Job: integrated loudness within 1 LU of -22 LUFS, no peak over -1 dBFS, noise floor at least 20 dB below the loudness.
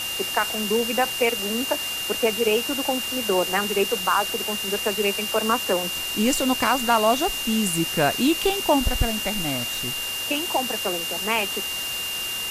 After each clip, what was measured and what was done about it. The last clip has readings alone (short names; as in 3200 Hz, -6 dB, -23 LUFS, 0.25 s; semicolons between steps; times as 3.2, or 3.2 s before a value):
steady tone 2800 Hz; tone level -28 dBFS; noise floor -29 dBFS; noise floor target -43 dBFS; loudness -22.5 LUFS; peak -6.5 dBFS; loudness target -22.0 LUFS
-> notch 2800 Hz, Q 30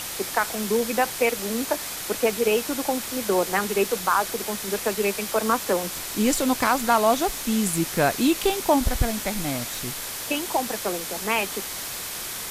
steady tone none; noise floor -33 dBFS; noise floor target -44 dBFS
-> noise print and reduce 11 dB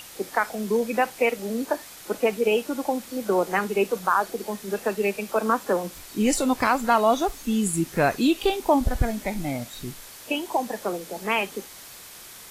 noise floor -44 dBFS; noise floor target -45 dBFS
-> noise print and reduce 6 dB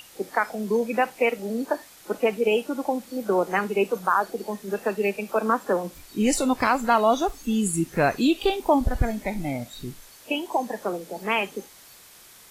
noise floor -50 dBFS; loudness -25.0 LUFS; peak -7.5 dBFS; loudness target -22.0 LUFS
-> gain +3 dB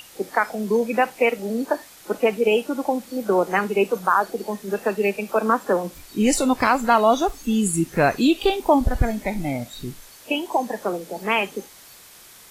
loudness -22.0 LUFS; peak -4.5 dBFS; noise floor -47 dBFS